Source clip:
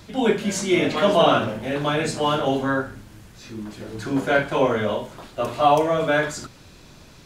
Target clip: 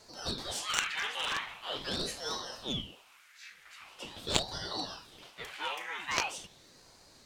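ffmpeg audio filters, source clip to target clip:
ffmpeg -i in.wav -filter_complex "[0:a]highpass=frequency=1900:width_type=q:width=3.7,aeval=exprs='0.531*(cos(1*acos(clip(val(0)/0.531,-1,1)))-cos(1*PI/2))+0.266*(cos(3*acos(clip(val(0)/0.531,-1,1)))-cos(3*PI/2))':channel_layout=same,asplit=2[link_01][link_02];[link_02]acrusher=bits=3:mix=0:aa=0.5,volume=-6.5dB[link_03];[link_01][link_03]amix=inputs=2:normalize=0,aeval=exprs='val(0)*sin(2*PI*1300*n/s+1300*0.9/0.43*sin(2*PI*0.43*n/s))':channel_layout=same,volume=-1dB" out.wav

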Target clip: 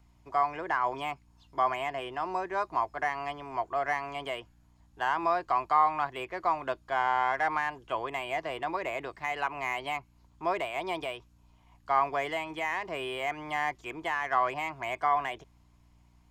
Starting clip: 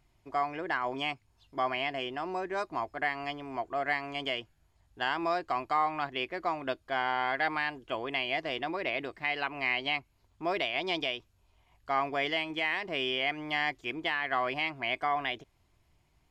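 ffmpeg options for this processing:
ffmpeg -i in.wav -filter_complex "[0:a]equalizer=frequency=250:width_type=o:width=0.67:gain=-7,equalizer=frequency=1000:width_type=o:width=0.67:gain=7,equalizer=frequency=6300:width_type=o:width=0.67:gain=4,acrossover=split=3000[link_01][link_02];[link_02]acompressor=threshold=-51dB:ratio=4:attack=1:release=60[link_03];[link_01][link_03]amix=inputs=2:normalize=0,aeval=exprs='val(0)+0.000891*(sin(2*PI*60*n/s)+sin(2*PI*2*60*n/s)/2+sin(2*PI*3*60*n/s)/3+sin(2*PI*4*60*n/s)/4+sin(2*PI*5*60*n/s)/5)':channel_layout=same,acrossover=split=280|970|1900[link_04][link_05][link_06][link_07];[link_07]asoftclip=type=tanh:threshold=-37.5dB[link_08];[link_04][link_05][link_06][link_08]amix=inputs=4:normalize=0" out.wav

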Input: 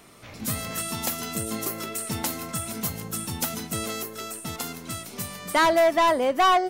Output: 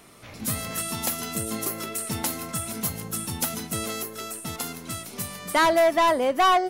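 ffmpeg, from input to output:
ffmpeg -i in.wav -af "equalizer=frequency=11000:width=7:gain=7" out.wav

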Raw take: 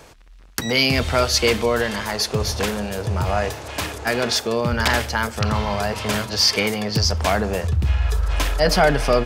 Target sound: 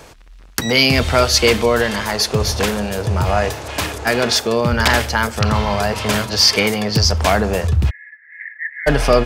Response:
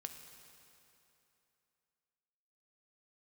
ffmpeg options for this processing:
-filter_complex "[0:a]asplit=3[link_01][link_02][link_03];[link_01]afade=type=out:start_time=7.89:duration=0.02[link_04];[link_02]asuperpass=centerf=1900:order=8:qfactor=4.3,afade=type=in:start_time=7.89:duration=0.02,afade=type=out:start_time=8.86:duration=0.02[link_05];[link_03]afade=type=in:start_time=8.86:duration=0.02[link_06];[link_04][link_05][link_06]amix=inputs=3:normalize=0,volume=4.5dB"

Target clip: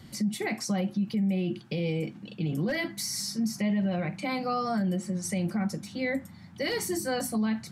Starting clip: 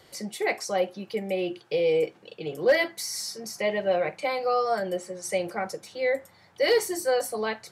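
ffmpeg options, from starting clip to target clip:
ffmpeg -i in.wav -af "lowshelf=frequency=320:width_type=q:width=3:gain=12,alimiter=limit=-21.5dB:level=0:latency=1:release=63" out.wav

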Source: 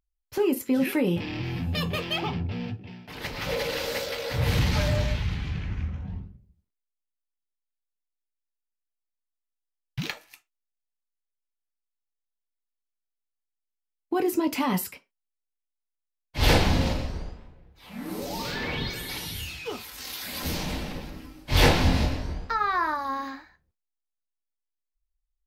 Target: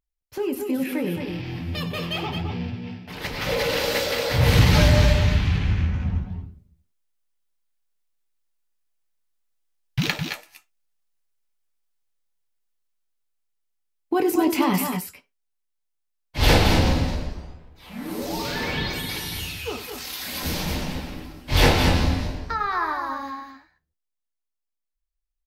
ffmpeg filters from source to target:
ffmpeg -i in.wav -filter_complex "[0:a]dynaudnorm=framelen=220:gausssize=31:maxgain=12dB,asplit=2[link_01][link_02];[link_02]aecho=0:1:95|211|223:0.237|0.266|0.422[link_03];[link_01][link_03]amix=inputs=2:normalize=0,volume=-3dB" out.wav

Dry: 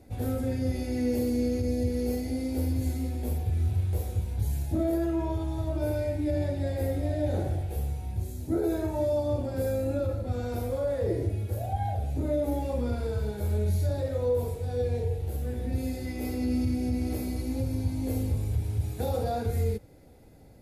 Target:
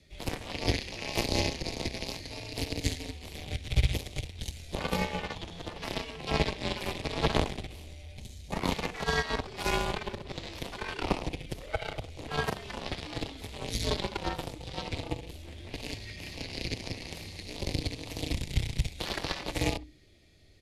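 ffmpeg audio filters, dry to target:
ffmpeg -i in.wav -filter_complex "[0:a]lowpass=3200,asplit=2[link_01][link_02];[link_02]adelay=66,lowpass=frequency=1200:poles=1,volume=-5dB,asplit=2[link_03][link_04];[link_04]adelay=66,lowpass=frequency=1200:poles=1,volume=0.33,asplit=2[link_05][link_06];[link_06]adelay=66,lowpass=frequency=1200:poles=1,volume=0.33,asplit=2[link_07][link_08];[link_08]adelay=66,lowpass=frequency=1200:poles=1,volume=0.33[link_09];[link_03][link_05][link_07][link_09]amix=inputs=4:normalize=0[link_10];[link_01][link_10]amix=inputs=2:normalize=0,aeval=exprs='0.178*(cos(1*acos(clip(val(0)/0.178,-1,1)))-cos(1*PI/2))+0.0708*(cos(3*acos(clip(val(0)/0.178,-1,1)))-cos(3*PI/2))':channel_layout=same,highpass=54,acrossover=split=1300[link_11][link_12];[link_12]aexciter=amount=12.2:drive=3:freq=2200[link_13];[link_11][link_13]amix=inputs=2:normalize=0,afreqshift=-150,volume=6dB" out.wav

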